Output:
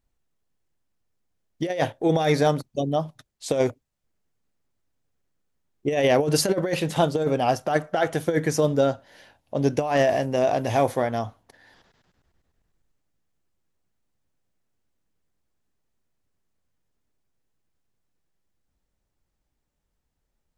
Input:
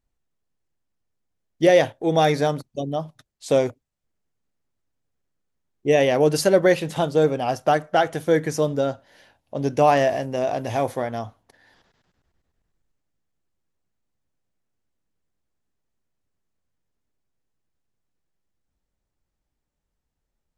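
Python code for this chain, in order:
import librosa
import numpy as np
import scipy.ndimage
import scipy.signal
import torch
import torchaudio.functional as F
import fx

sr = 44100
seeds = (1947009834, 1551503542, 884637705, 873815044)

y = fx.over_compress(x, sr, threshold_db=-19.0, ratio=-0.5)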